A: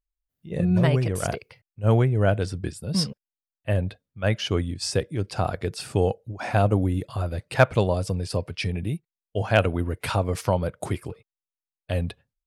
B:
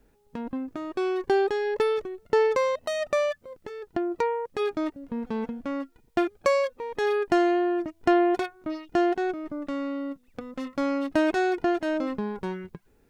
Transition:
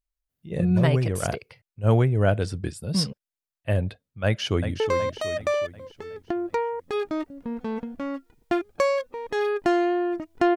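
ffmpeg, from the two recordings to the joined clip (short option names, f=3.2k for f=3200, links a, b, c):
-filter_complex "[0:a]apad=whole_dur=10.56,atrim=end=10.56,atrim=end=4.802[a];[1:a]atrim=start=2.458:end=8.22[b];[a][b]acrossfade=d=0.004:c1=hsin:c2=hsin,asplit=2[c][d];[d]afade=t=in:st=4.25:d=0.01,afade=t=out:st=4.8:d=0.01,aecho=0:1:370|740|1110|1480|1850|2220:0.375837|0.187919|0.0939594|0.0469797|0.0234898|0.0117449[e];[c][e]amix=inputs=2:normalize=0"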